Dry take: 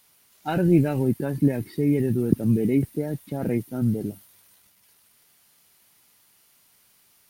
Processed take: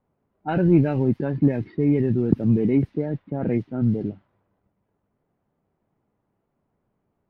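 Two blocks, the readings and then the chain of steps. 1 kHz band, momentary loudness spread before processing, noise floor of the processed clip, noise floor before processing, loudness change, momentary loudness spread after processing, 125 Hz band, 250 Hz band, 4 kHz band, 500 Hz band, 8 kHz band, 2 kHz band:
+1.0 dB, 10 LU, -76 dBFS, -61 dBFS, +2.0 dB, 9 LU, +2.0 dB, +1.5 dB, no reading, +1.5 dB, under -20 dB, 0.0 dB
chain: level-controlled noise filter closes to 570 Hz, open at -18 dBFS; in parallel at -9.5 dB: saturation -15.5 dBFS, distortion -14 dB; on the sum: distance through air 230 m

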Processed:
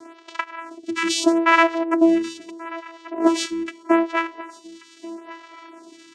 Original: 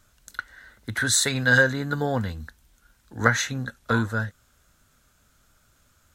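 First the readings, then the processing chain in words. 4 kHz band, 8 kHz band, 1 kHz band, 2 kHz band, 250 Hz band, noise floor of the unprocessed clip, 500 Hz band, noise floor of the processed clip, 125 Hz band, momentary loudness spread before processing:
+1.0 dB, -5.5 dB, +9.0 dB, -2.0 dB, +10.0 dB, -64 dBFS, +6.0 dB, -50 dBFS, under -25 dB, 19 LU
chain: reverb removal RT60 1.2 s; power-law waveshaper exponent 0.5; in parallel at -5 dB: Schmitt trigger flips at -15 dBFS; on the sum: vocoder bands 4, saw 331 Hz; on a send: feedback delay 1134 ms, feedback 27%, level -18 dB; on the sum: lamp-driven phase shifter 0.78 Hz; trim -1.5 dB

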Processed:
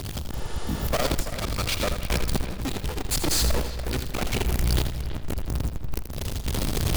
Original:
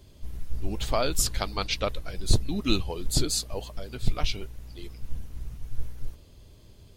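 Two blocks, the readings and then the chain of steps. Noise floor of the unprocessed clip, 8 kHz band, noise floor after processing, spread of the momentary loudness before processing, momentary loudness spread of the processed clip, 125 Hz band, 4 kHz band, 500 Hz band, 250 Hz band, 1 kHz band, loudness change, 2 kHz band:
-52 dBFS, +1.5 dB, -34 dBFS, 18 LU, 9 LU, +5.5 dB, +1.5 dB, +2.0 dB, +3.0 dB, +2.5 dB, +1.5 dB, +5.5 dB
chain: one-bit comparator; bass shelf 65 Hz +8.5 dB; gain riding within 4 dB 0.5 s; peak limiter -19.5 dBFS, peak gain reduction 37.5 dB; sine folder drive 6 dB, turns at -19.5 dBFS; spectral replace 0.35–0.85 s, 330–11000 Hz before; tremolo saw up 0.83 Hz, depth 75%; feedback echo behind a low-pass 330 ms, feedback 39%, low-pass 3.6 kHz, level -11.5 dB; bit-crushed delay 82 ms, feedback 35%, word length 9-bit, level -9 dB; trim +1 dB

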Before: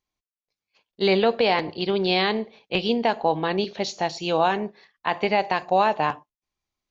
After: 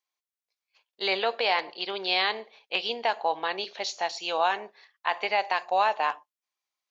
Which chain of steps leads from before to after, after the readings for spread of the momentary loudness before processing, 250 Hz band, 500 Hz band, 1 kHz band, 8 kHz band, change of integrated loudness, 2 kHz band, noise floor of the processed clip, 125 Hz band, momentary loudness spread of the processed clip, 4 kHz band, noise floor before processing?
8 LU, -17.5 dB, -8.0 dB, -3.0 dB, no reading, -4.5 dB, -1.0 dB, under -85 dBFS, under -20 dB, 8 LU, -1.0 dB, under -85 dBFS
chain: high-pass 730 Hz 12 dB/octave; trim -1 dB

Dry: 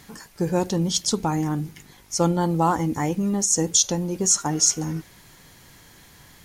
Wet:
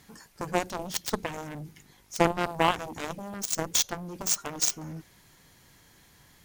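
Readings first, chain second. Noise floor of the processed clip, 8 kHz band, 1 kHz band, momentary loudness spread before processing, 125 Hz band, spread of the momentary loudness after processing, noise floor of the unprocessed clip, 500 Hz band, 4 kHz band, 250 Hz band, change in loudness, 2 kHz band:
-59 dBFS, -9.5 dB, -4.0 dB, 11 LU, -12.5 dB, 15 LU, -51 dBFS, -5.0 dB, -5.5 dB, -11.5 dB, -7.0 dB, +3.5 dB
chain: Chebyshev shaper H 4 -19 dB, 6 -20 dB, 7 -14 dB, 8 -32 dB, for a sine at -4.5 dBFS; dynamic bell 7.3 kHz, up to -7 dB, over -35 dBFS, Q 0.71

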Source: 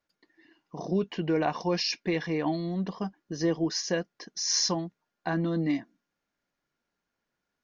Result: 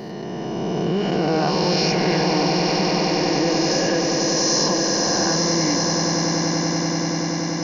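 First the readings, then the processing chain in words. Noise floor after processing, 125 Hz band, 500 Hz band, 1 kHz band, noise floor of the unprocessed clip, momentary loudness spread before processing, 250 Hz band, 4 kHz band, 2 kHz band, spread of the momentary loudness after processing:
-28 dBFS, +10.5 dB, +11.5 dB, +13.5 dB, -85 dBFS, 11 LU, +9.5 dB, +12.5 dB, +12.0 dB, 5 LU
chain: reverse spectral sustain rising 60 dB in 2.13 s; echo with a slow build-up 96 ms, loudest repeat 8, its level -9 dB; level flattener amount 50%

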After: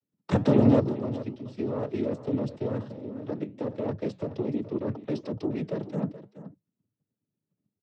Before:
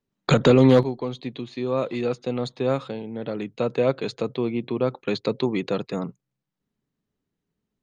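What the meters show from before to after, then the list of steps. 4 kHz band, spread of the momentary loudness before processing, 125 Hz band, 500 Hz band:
-15.5 dB, 15 LU, -4.0 dB, -7.5 dB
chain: single-diode clipper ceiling -19.5 dBFS; level held to a coarse grid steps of 10 dB; noise-vocoded speech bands 12; tilt shelf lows +7.5 dB, about 790 Hz; flange 1.3 Hz, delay 2.4 ms, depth 6.9 ms, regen -83%; on a send: delay 425 ms -14 dB; on the sum: trim +1.5 dB

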